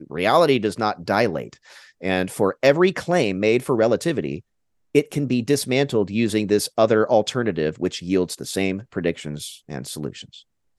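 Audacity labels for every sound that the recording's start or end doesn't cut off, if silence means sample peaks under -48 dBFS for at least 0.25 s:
4.950000	10.420000	sound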